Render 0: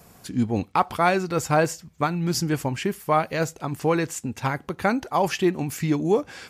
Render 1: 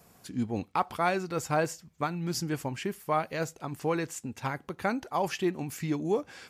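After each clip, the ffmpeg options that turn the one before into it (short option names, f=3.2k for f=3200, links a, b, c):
-af "lowshelf=f=91:g=-5,volume=-7dB"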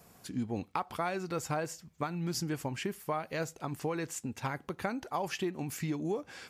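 -af "acompressor=threshold=-30dB:ratio=6"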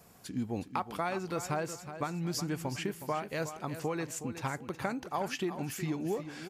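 -af "aecho=1:1:367|734|1101:0.282|0.0902|0.0289"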